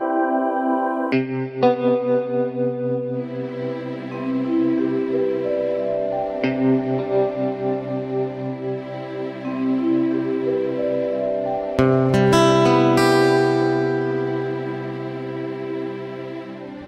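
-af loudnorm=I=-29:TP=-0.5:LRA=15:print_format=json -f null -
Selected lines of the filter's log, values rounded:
"input_i" : "-21.6",
"input_tp" : "-4.0",
"input_lra" : "9.1",
"input_thresh" : "-31.7",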